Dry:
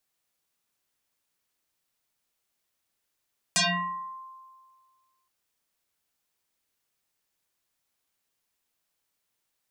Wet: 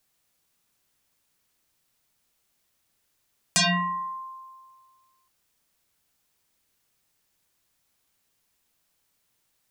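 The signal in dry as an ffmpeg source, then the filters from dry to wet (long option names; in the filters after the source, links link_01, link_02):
-f lavfi -i "aevalsrc='0.112*pow(10,-3*t/1.81)*sin(2*PI*1050*t+10*pow(10,-3*t/0.66)*sin(2*PI*0.83*1050*t))':duration=1.72:sample_rate=44100"
-filter_complex "[0:a]bass=frequency=250:gain=5,treble=frequency=4000:gain=1,asplit=2[link_01][link_02];[link_02]acompressor=threshold=-34dB:ratio=6,volume=0dB[link_03];[link_01][link_03]amix=inputs=2:normalize=0"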